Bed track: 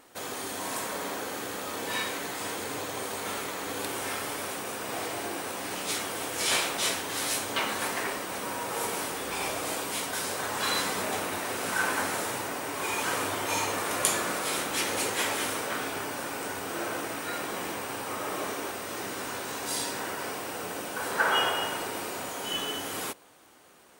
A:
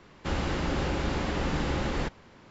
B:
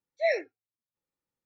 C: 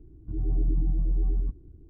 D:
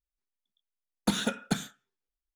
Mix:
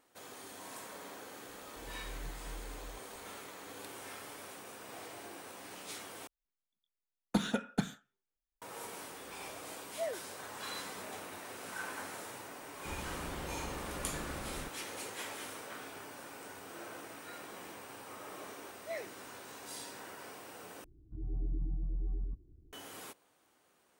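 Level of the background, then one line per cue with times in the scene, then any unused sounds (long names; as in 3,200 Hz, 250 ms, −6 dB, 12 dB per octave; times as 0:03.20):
bed track −14 dB
0:01.48: mix in C −18 dB + amplitude modulation by smooth noise
0:06.27: overwrite with D −3 dB + high-shelf EQ 2,500 Hz −8 dB
0:09.77: mix in B −11 dB + inverse Chebyshev low-pass filter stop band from 3,100 Hz
0:12.60: mix in A −14.5 dB
0:18.66: mix in B −15.5 dB
0:20.84: overwrite with C −11 dB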